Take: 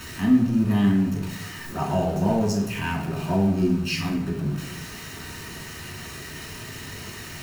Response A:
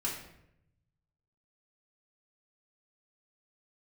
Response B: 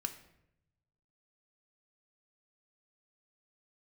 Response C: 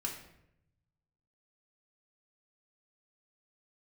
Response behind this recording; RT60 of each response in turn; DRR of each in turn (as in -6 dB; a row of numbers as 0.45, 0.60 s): C; 0.80, 0.80, 0.80 s; -5.5, 6.5, -1.0 dB